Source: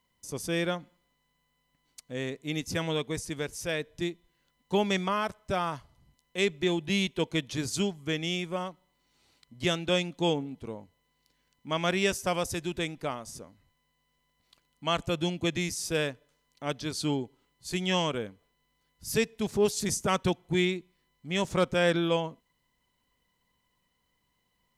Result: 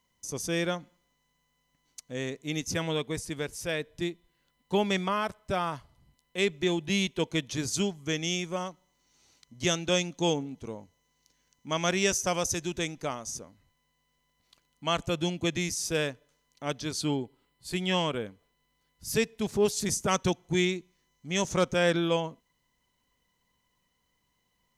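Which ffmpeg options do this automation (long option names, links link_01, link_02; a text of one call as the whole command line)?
ffmpeg -i in.wav -af "asetnsamples=nb_out_samples=441:pad=0,asendcmd='2.74 equalizer g -1;6.53 equalizer g 5.5;8.05 equalizer g 13.5;13.37 equalizer g 5;17.01 equalizer g -6;18.26 equalizer g 2;20.11 equalizer g 13;21.73 equalizer g 5.5',equalizer=frequency=6200:width_type=o:width=0.33:gain=8" out.wav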